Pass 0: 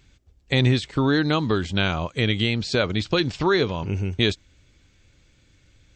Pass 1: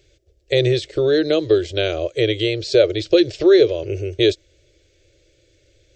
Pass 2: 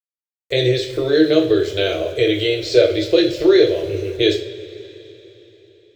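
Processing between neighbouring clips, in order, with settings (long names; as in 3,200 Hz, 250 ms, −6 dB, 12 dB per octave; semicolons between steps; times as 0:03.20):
drawn EQ curve 130 Hz 0 dB, 230 Hz −29 dB, 330 Hz +12 dB, 600 Hz +14 dB, 910 Hz −15 dB, 1,700 Hz 0 dB, 2,900 Hz +3 dB, 5,500 Hz +6 dB, 8,700 Hz +2 dB; level −2.5 dB
centre clipping without the shift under −42 dBFS; coupled-rooms reverb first 0.37 s, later 4 s, from −21 dB, DRR −1 dB; level −1.5 dB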